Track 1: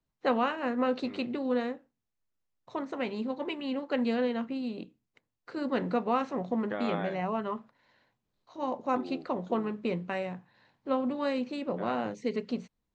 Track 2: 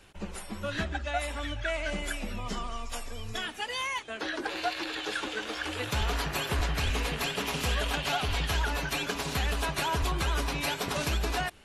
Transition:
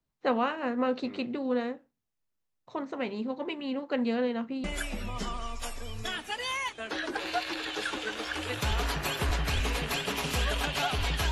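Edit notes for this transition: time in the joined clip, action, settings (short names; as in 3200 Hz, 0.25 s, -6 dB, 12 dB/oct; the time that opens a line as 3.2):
track 1
4.64 switch to track 2 from 1.94 s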